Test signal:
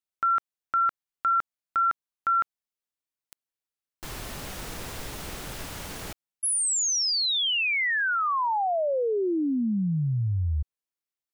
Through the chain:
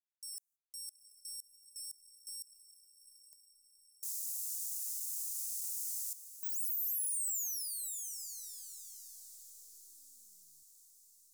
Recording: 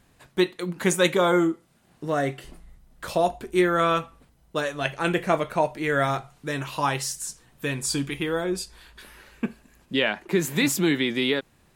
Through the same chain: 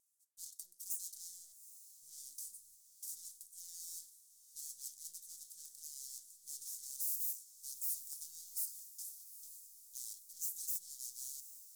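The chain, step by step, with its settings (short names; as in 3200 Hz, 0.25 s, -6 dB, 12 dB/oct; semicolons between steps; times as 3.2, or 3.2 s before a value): gate -47 dBFS, range -18 dB; full-wave rectifier; reverse; compressor 6:1, threshold -31 dBFS; reverse; soft clip -34.5 dBFS; inverse Chebyshev high-pass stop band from 2700 Hz, stop band 50 dB; wow and flutter 26 cents; diffused feedback echo 0.83 s, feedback 58%, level -13.5 dB; gain +11 dB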